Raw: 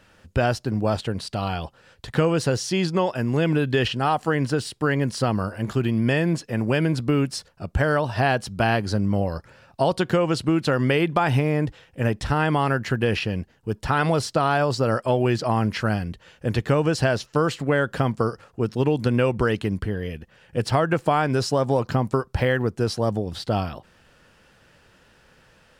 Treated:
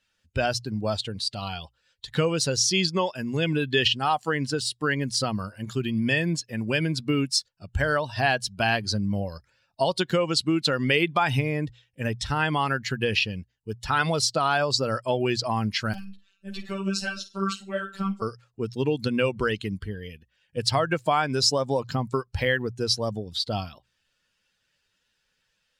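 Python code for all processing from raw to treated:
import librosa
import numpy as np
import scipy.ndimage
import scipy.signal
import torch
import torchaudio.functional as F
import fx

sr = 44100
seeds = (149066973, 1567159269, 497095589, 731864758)

y = fx.chain(x, sr, fx.robotise(hz=194.0),
    fx.room_flutter(wall_m=8.7, rt60_s=0.37),
    fx.ensemble(), at=(15.93, 18.22))
y = fx.bin_expand(y, sr, power=1.5)
y = fx.peak_eq(y, sr, hz=5000.0, db=13.0, octaves=2.3)
y = fx.hum_notches(y, sr, base_hz=60, count=2)
y = y * librosa.db_to_amplitude(-1.5)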